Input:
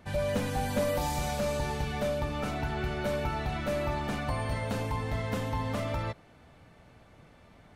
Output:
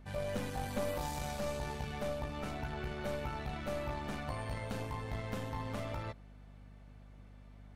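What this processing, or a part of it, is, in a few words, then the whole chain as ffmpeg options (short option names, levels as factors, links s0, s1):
valve amplifier with mains hum: -af "aeval=exprs='(tanh(12.6*val(0)+0.7)-tanh(0.7))/12.6':c=same,aeval=exprs='val(0)+0.00355*(sin(2*PI*50*n/s)+sin(2*PI*2*50*n/s)/2+sin(2*PI*3*50*n/s)/3+sin(2*PI*4*50*n/s)/4+sin(2*PI*5*50*n/s)/5)':c=same,volume=0.631"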